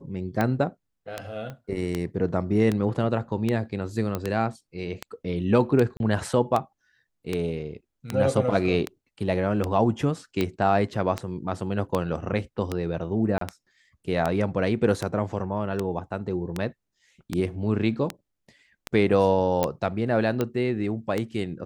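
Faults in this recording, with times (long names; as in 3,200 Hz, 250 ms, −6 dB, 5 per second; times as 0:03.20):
scratch tick 78 rpm −12 dBFS
0:01.50: click −24 dBFS
0:04.15: click −14 dBFS
0:05.97–0:06.00: drop-out 31 ms
0:13.38–0:13.41: drop-out 33 ms
0:19.63: click −10 dBFS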